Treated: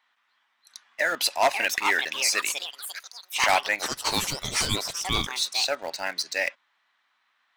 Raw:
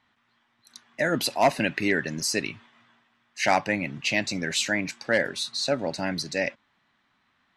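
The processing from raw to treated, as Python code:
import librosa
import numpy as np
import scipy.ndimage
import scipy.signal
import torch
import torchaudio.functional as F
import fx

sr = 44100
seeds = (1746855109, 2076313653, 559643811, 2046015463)

p1 = scipy.signal.sosfilt(scipy.signal.butter(2, 810.0, 'highpass', fs=sr, output='sos'), x)
p2 = fx.ring_mod(p1, sr, carrier_hz=1700.0, at=(3.79, 5.27))
p3 = np.where(np.abs(p2) >= 10.0 ** (-31.5 / 20.0), p2, 0.0)
p4 = p2 + (p3 * librosa.db_to_amplitude(-6.0))
p5 = fx.echo_pitch(p4, sr, ms=789, semitones=5, count=3, db_per_echo=-6.0)
y = 10.0 ** (-11.5 / 20.0) * (np.abs((p5 / 10.0 ** (-11.5 / 20.0) + 3.0) % 4.0 - 2.0) - 1.0)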